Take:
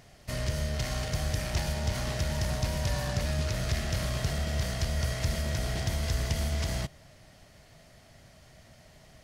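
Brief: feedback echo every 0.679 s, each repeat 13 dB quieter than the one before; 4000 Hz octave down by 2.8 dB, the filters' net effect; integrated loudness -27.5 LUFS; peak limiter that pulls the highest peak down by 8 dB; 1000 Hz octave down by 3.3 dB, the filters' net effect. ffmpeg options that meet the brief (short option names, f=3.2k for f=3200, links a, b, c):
-af "equalizer=f=1k:t=o:g=-4.5,equalizer=f=4k:t=o:g=-3.5,alimiter=level_in=4dB:limit=-24dB:level=0:latency=1,volume=-4dB,aecho=1:1:679|1358|2037:0.224|0.0493|0.0108,volume=9.5dB"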